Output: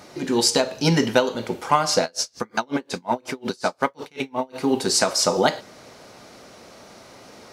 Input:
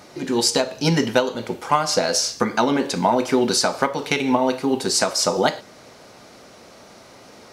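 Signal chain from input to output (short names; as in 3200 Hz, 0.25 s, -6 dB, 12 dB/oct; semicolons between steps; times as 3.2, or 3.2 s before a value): 2.03–4.56 dB-linear tremolo 5.5 Hz, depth 35 dB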